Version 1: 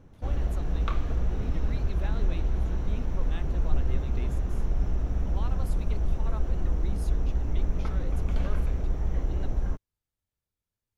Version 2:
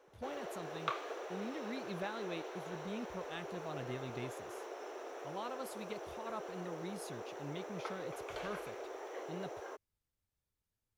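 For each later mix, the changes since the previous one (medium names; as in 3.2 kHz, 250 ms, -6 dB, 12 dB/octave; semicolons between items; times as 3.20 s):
background: add steep high-pass 370 Hz 48 dB/octave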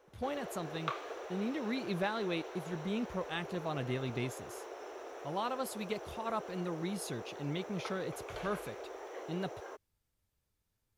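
speech +7.5 dB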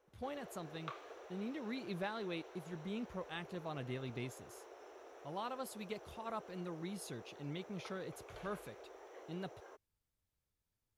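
speech -6.5 dB; background -9.5 dB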